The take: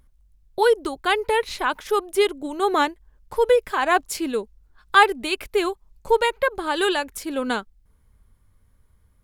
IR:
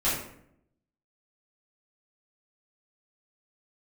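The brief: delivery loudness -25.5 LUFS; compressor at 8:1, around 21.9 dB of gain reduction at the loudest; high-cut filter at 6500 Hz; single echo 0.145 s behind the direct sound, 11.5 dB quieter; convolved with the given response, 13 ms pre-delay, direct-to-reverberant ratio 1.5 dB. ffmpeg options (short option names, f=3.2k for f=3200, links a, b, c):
-filter_complex "[0:a]lowpass=6.5k,acompressor=threshold=-33dB:ratio=8,aecho=1:1:145:0.266,asplit=2[a][b];[1:a]atrim=start_sample=2205,adelay=13[c];[b][c]afir=irnorm=-1:irlink=0,volume=-13dB[d];[a][d]amix=inputs=2:normalize=0,volume=9.5dB"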